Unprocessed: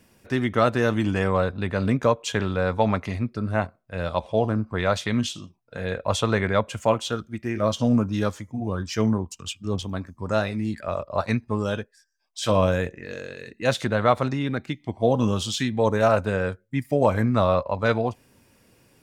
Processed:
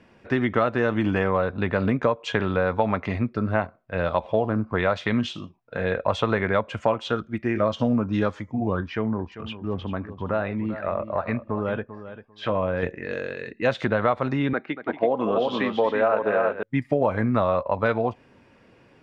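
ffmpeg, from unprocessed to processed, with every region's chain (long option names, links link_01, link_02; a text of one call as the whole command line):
ffmpeg -i in.wav -filter_complex "[0:a]asettb=1/sr,asplit=3[link_01][link_02][link_03];[link_01]atrim=end=8.804[link_04];[link_02]atrim=start=8.8:end=12.83,asetpts=PTS-STARTPTS,afade=type=in:duration=0.004:curve=qsin,afade=type=out:start_time=4.026:duration=0.004:curve=qsin,lowpass=2500,acompressor=threshold=-29dB:ratio=2:attack=3.2:release=140:knee=1:detection=peak,aecho=1:1:394|788:0.224|0.0358,atrim=end_sample=177723[link_05];[link_03]atrim=start=12.826[link_06];[link_04][link_05]acrossfade=duration=0.004:curve1=hsin:curve2=qsin[link_07];[link_07][link_06]acrossfade=duration=0.004:curve1=qsin:curve2=hsin,asettb=1/sr,asplit=3[link_08][link_09][link_10];[link_08]atrim=end=14.534[link_11];[link_09]atrim=start=14.53:end=16.63,asetpts=PTS-STARTPTS,afade=type=in:duration=0.004:curve=qsin,afade=type=out:start_time=2.096:duration=0.004:curve=qsin,highpass=300,lowpass=2800,aecho=1:1:234|334:0.211|0.562,atrim=end_sample=92610[link_12];[link_10]atrim=start=16.626[link_13];[link_11][link_12]acrossfade=duration=0.004:curve1=hsin:curve2=qsin[link_14];[link_14][link_13]acrossfade=duration=0.004:curve1=qsin:curve2=hsin,lowpass=2500,lowshelf=frequency=170:gain=-7.5,acompressor=threshold=-25dB:ratio=4,volume=6.5dB" out.wav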